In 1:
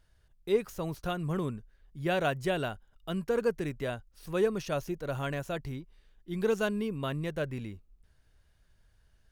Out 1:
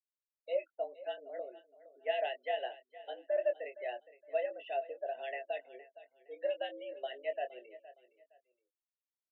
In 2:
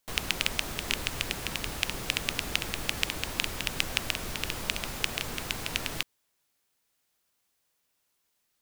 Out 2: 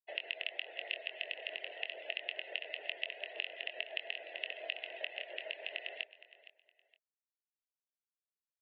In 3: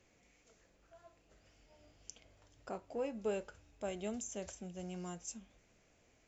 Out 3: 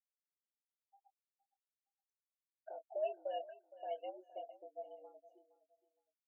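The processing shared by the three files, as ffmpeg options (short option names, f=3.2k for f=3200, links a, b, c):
-filter_complex "[0:a]afftfilt=real='re*gte(hypot(re,im),0.0126)':imag='im*gte(hypot(re,im),0.0126)':win_size=1024:overlap=0.75,equalizer=f=800:w=0.59:g=-11.5,acompressor=threshold=-41dB:ratio=2,asplit=3[a][b][c];[a]bandpass=f=530:t=q:w=8,volume=0dB[d];[b]bandpass=f=1.84k:t=q:w=8,volume=-6dB[e];[c]bandpass=f=2.48k:t=q:w=8,volume=-9dB[f];[d][e][f]amix=inputs=3:normalize=0,acrossover=split=2000[g][h];[g]aeval=exprs='val(0)*(1-0.5/2+0.5/2*cos(2*PI*7.1*n/s))':c=same[i];[h]aeval=exprs='val(0)*(1-0.5/2-0.5/2*cos(2*PI*7.1*n/s))':c=same[j];[i][j]amix=inputs=2:normalize=0,afreqshift=13,asplit=2[k][l];[l]adelay=23,volume=-8dB[m];[k][m]amix=inputs=2:normalize=0,aecho=1:1:465|930:0.141|0.0367,highpass=f=280:t=q:w=0.5412,highpass=f=280:t=q:w=1.307,lowpass=f=3.2k:t=q:w=0.5176,lowpass=f=3.2k:t=q:w=0.7071,lowpass=f=3.2k:t=q:w=1.932,afreqshift=110,volume=17.5dB"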